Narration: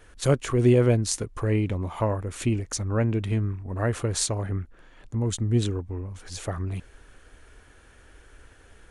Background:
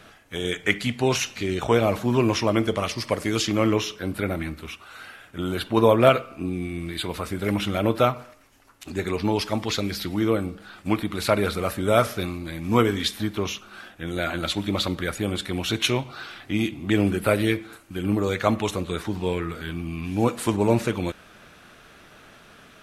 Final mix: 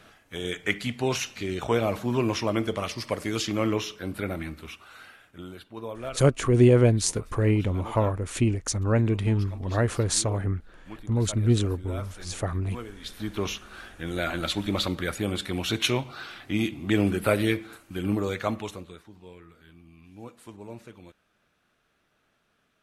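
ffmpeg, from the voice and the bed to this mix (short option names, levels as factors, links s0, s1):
-filter_complex "[0:a]adelay=5950,volume=1.19[s0];[1:a]volume=4.47,afade=t=out:st=4.87:d=0.77:silence=0.177828,afade=t=in:st=13:d=0.44:silence=0.133352,afade=t=out:st=18:d=1.02:silence=0.105925[s1];[s0][s1]amix=inputs=2:normalize=0"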